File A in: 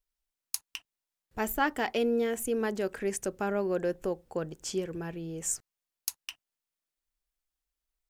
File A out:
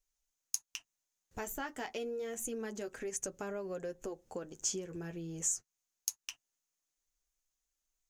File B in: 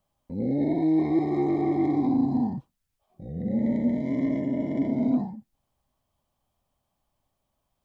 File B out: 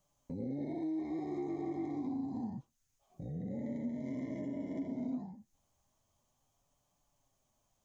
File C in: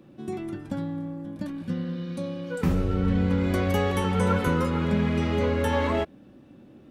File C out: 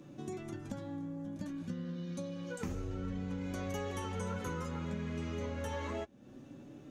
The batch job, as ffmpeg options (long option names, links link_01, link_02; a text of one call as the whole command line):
ffmpeg -i in.wav -af "flanger=delay=6.8:depth=4.7:regen=-31:speed=0.29:shape=sinusoidal,acompressor=threshold=-43dB:ratio=3,equalizer=frequency=6500:width_type=o:width=0.4:gain=13.5,volume=2.5dB" out.wav